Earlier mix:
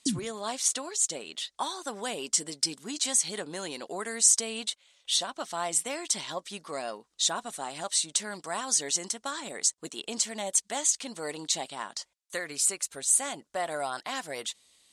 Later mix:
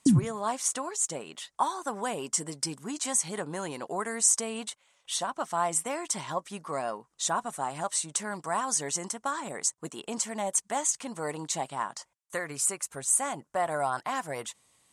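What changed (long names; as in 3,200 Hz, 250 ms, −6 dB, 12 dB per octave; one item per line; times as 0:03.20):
background +6.0 dB
master: add octave-band graphic EQ 125/1,000/4,000 Hz +11/+7/−10 dB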